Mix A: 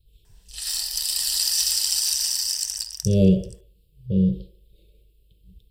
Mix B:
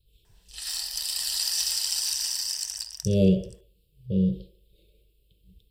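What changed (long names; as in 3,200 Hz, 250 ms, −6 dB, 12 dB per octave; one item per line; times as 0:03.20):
speech: add spectral tilt +1.5 dB per octave
master: add high-shelf EQ 4,000 Hz −7 dB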